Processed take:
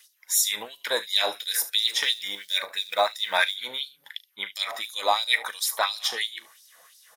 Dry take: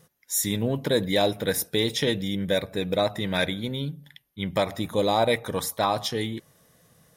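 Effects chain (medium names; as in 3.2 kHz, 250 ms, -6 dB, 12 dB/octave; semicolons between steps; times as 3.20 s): in parallel at 0 dB: compression, threshold -34 dBFS, peak gain reduction 15.5 dB; 1.83–3.56 s: on the sum: short-mantissa float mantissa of 4-bit; early reflections 38 ms -13.5 dB, 73 ms -16 dB; LFO high-pass sine 2.9 Hz 840–4900 Hz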